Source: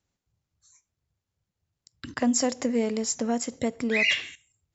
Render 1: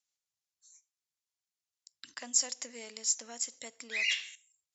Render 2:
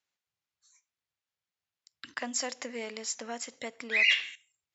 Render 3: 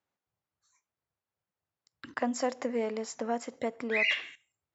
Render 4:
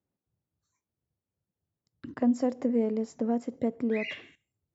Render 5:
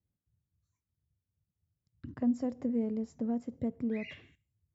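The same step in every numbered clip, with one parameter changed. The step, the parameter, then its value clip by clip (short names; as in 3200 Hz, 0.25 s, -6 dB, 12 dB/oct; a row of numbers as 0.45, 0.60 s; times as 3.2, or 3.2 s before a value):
band-pass, frequency: 7400, 2600, 1000, 310, 100 Hz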